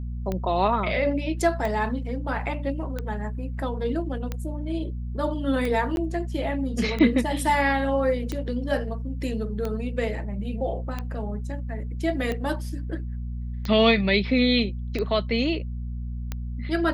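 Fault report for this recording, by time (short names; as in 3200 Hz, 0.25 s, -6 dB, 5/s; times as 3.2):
hum 60 Hz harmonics 4 -31 dBFS
tick 45 rpm -16 dBFS
5.96–5.97 gap 11 ms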